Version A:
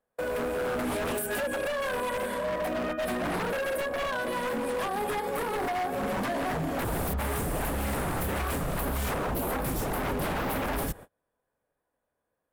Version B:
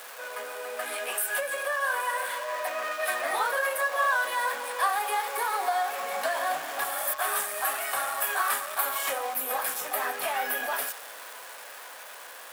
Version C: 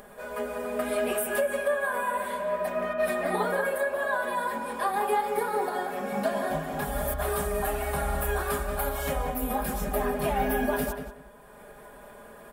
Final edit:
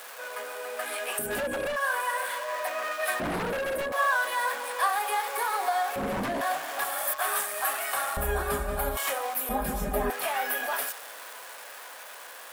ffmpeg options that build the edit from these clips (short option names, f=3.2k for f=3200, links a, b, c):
-filter_complex "[0:a]asplit=3[a][b][c];[2:a]asplit=2[d][e];[1:a]asplit=6[f][g][h][i][j][k];[f]atrim=end=1.192[l];[a]atrim=start=1.188:end=1.762[m];[g]atrim=start=1.758:end=3.202[n];[b]atrim=start=3.198:end=3.922[o];[h]atrim=start=3.918:end=5.962[p];[c]atrim=start=5.958:end=6.412[q];[i]atrim=start=6.408:end=8.172[r];[d]atrim=start=8.168:end=8.972[s];[j]atrim=start=8.968:end=9.492[t];[e]atrim=start=9.488:end=10.102[u];[k]atrim=start=10.098[v];[l][m]acrossfade=d=0.004:c1=hsin:c2=hsin[w];[w][n]acrossfade=d=0.004:c1=hsin:c2=hsin[x];[x][o]acrossfade=d=0.004:c1=hsin:c2=hsin[y];[y][p]acrossfade=d=0.004:c1=hsin:c2=hsin[z];[z][q]acrossfade=d=0.004:c1=hsin:c2=hsin[aa];[aa][r]acrossfade=d=0.004:c1=hsin:c2=hsin[ab];[ab][s]acrossfade=d=0.004:c1=hsin:c2=hsin[ac];[ac][t]acrossfade=d=0.004:c1=hsin:c2=hsin[ad];[ad][u]acrossfade=d=0.004:c1=hsin:c2=hsin[ae];[ae][v]acrossfade=d=0.004:c1=hsin:c2=hsin"